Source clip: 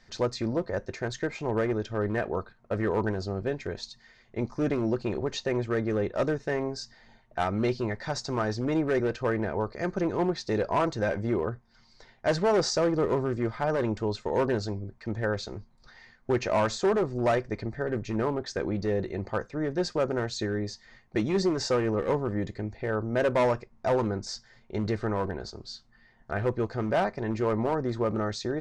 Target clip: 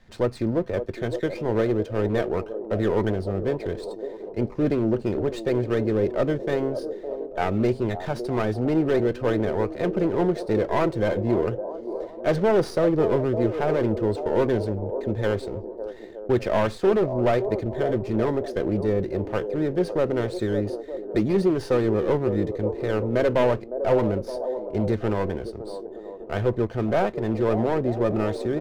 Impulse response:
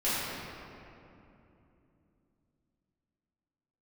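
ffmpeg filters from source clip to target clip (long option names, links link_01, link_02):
-filter_complex "[0:a]lowpass=3000,acrossover=split=340|680[link_01][link_02][link_03];[link_02]aecho=1:1:560|924|1161|1314|1414:0.631|0.398|0.251|0.158|0.1[link_04];[link_03]aeval=exprs='max(val(0),0)':channel_layout=same[link_05];[link_01][link_04][link_05]amix=inputs=3:normalize=0,volume=5dB"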